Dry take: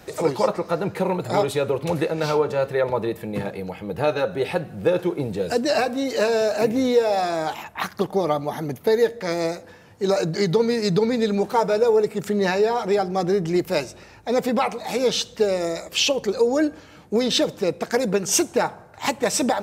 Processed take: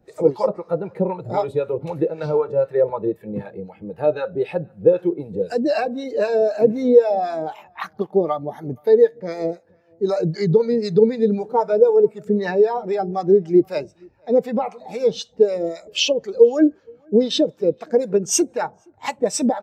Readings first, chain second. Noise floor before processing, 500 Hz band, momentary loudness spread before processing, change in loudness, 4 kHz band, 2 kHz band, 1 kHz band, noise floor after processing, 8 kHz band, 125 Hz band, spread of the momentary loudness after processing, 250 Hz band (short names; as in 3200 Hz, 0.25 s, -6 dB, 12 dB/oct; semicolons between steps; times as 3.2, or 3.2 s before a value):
-46 dBFS, +3.5 dB, 7 LU, +2.5 dB, -2.5 dB, -5.0 dB, -1.5 dB, -56 dBFS, n/a, 0.0 dB, 13 LU, +2.0 dB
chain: harmonic tremolo 3.9 Hz, depth 70%, crossover 710 Hz; outdoor echo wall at 81 m, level -21 dB; spectral expander 1.5:1; gain +6.5 dB